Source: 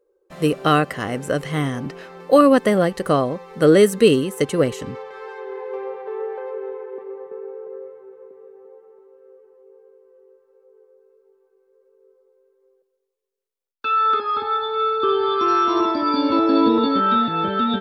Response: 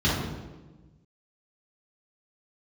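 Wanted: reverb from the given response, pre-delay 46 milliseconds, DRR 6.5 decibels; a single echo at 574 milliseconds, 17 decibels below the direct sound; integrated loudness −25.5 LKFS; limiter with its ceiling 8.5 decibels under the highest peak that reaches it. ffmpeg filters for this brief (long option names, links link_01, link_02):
-filter_complex "[0:a]alimiter=limit=-10.5dB:level=0:latency=1,aecho=1:1:574:0.141,asplit=2[link_01][link_02];[1:a]atrim=start_sample=2205,adelay=46[link_03];[link_02][link_03]afir=irnorm=-1:irlink=0,volume=-21.5dB[link_04];[link_01][link_04]amix=inputs=2:normalize=0,volume=-6.5dB"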